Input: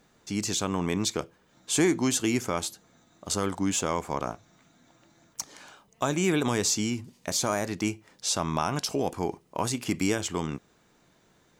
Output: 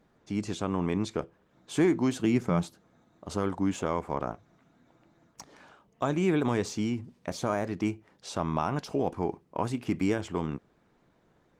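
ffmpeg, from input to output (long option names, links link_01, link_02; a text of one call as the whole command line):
ffmpeg -i in.wav -filter_complex "[0:a]lowpass=frequency=1500:poles=1,asplit=3[link_01][link_02][link_03];[link_01]afade=type=out:start_time=2.19:duration=0.02[link_04];[link_02]equalizer=frequency=170:width=3.3:gain=13.5,afade=type=in:start_time=2.19:duration=0.02,afade=type=out:start_time=2.68:duration=0.02[link_05];[link_03]afade=type=in:start_time=2.68:duration=0.02[link_06];[link_04][link_05][link_06]amix=inputs=3:normalize=0" -ar 48000 -c:a libopus -b:a 24k out.opus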